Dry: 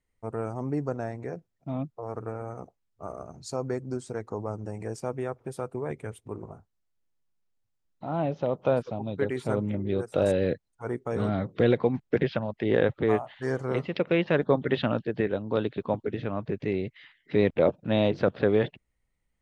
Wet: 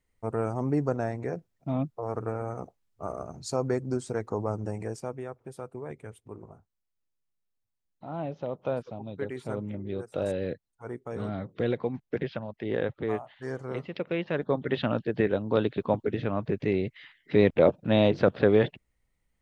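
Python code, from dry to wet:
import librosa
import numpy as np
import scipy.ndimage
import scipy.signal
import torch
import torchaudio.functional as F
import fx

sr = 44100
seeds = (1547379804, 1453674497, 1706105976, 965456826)

y = fx.gain(x, sr, db=fx.line((4.7, 3.0), (5.24, -6.0), (14.3, -6.0), (15.25, 2.0)))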